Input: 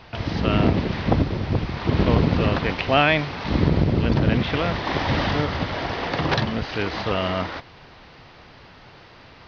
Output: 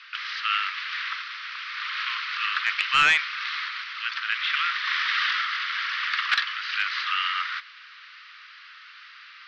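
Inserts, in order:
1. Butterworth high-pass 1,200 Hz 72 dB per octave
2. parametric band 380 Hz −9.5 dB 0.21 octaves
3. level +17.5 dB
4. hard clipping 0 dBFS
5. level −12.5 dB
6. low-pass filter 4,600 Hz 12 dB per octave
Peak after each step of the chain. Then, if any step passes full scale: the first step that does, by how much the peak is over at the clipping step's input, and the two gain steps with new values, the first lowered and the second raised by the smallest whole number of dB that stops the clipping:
−8.5, −8.5, +9.0, 0.0, −12.5, −11.5 dBFS
step 3, 9.0 dB
step 3 +8.5 dB, step 5 −3.5 dB

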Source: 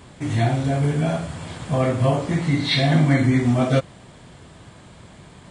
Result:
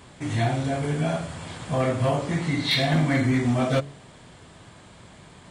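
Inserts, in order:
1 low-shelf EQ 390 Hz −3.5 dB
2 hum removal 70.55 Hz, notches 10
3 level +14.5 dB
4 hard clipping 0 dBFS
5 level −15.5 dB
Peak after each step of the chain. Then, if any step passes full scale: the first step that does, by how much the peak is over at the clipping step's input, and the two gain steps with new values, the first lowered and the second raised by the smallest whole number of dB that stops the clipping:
−7.0, −7.5, +7.0, 0.0, −15.5 dBFS
step 3, 7.0 dB
step 3 +7.5 dB, step 5 −8.5 dB

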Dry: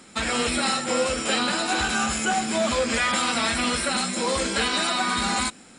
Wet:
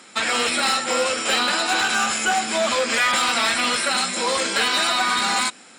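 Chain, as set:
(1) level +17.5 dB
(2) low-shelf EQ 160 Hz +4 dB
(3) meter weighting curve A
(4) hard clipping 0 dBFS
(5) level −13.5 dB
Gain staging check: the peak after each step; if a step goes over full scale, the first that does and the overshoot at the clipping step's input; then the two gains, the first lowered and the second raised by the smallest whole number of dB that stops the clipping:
+7.0, +7.0, +8.0, 0.0, −13.5 dBFS
step 1, 8.0 dB
step 1 +9.5 dB, step 5 −5.5 dB

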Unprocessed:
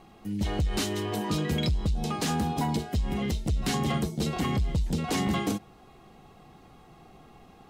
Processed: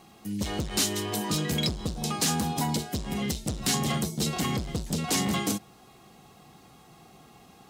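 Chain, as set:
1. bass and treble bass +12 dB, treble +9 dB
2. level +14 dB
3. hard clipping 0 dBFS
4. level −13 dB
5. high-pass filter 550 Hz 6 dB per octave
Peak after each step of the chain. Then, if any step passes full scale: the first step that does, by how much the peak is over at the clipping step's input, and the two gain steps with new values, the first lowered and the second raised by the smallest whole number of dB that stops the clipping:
−7.5, +6.5, 0.0, −13.0, −12.5 dBFS
step 2, 6.5 dB
step 2 +7 dB, step 4 −6 dB

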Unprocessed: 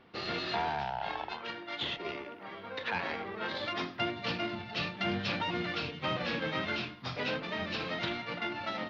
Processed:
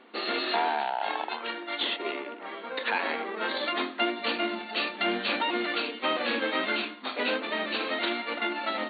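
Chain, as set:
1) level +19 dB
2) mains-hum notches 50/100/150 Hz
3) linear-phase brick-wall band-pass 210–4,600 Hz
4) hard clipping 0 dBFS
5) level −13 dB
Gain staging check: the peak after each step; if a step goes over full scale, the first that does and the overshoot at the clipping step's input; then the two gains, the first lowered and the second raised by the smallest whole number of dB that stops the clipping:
−1.0, −1.0, −1.5, −1.5, −14.5 dBFS
no step passes full scale

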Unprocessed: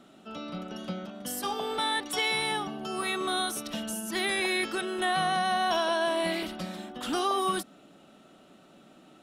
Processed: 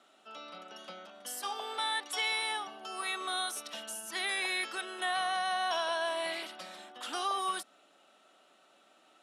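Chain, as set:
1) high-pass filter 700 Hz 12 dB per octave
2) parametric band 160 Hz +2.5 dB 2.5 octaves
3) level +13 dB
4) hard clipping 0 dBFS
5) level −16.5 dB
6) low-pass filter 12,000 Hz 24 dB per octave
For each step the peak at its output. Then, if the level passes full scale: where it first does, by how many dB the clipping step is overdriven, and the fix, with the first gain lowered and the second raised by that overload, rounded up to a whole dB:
−17.5, −17.5, −4.5, −4.5, −21.0, −21.0 dBFS
no step passes full scale

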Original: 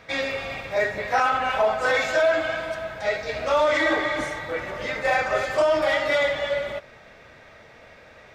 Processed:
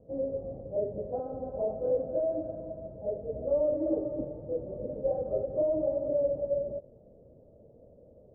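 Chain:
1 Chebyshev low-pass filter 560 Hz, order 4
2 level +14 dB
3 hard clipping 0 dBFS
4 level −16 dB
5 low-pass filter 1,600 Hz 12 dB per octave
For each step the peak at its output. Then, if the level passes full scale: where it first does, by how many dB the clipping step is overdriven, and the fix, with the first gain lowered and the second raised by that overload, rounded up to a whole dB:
−16.0, −2.0, −2.0, −18.0, −18.0 dBFS
no step passes full scale

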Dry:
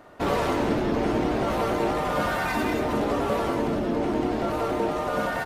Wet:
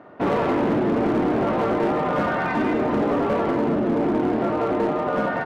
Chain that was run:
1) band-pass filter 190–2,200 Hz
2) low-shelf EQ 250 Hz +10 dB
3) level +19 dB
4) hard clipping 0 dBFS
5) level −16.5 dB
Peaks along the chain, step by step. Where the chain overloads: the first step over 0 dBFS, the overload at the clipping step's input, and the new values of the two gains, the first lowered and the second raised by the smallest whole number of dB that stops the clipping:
−12.5, −10.5, +8.5, 0.0, −16.5 dBFS
step 3, 8.5 dB
step 3 +10 dB, step 5 −7.5 dB

